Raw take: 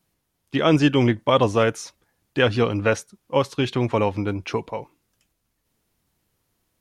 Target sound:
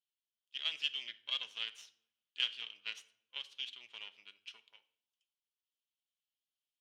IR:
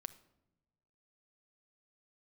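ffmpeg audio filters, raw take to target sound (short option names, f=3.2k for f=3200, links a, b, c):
-filter_complex "[0:a]crystalizer=i=8.5:c=0,asplit=2[a][b];[b]asoftclip=type=hard:threshold=-14dB,volume=-10dB[c];[a][c]amix=inputs=2:normalize=0,aeval=exprs='1.41*(cos(1*acos(clip(val(0)/1.41,-1,1)))-cos(1*PI/2))+0.398*(cos(3*acos(clip(val(0)/1.41,-1,1)))-cos(3*PI/2))+0.0631*(cos(6*acos(clip(val(0)/1.41,-1,1)))-cos(6*PI/2))':c=same,bandpass=f=3.1k:t=q:w=4.8:csg=0[d];[1:a]atrim=start_sample=2205,asetrate=52920,aresample=44100[e];[d][e]afir=irnorm=-1:irlink=0,volume=-4.5dB"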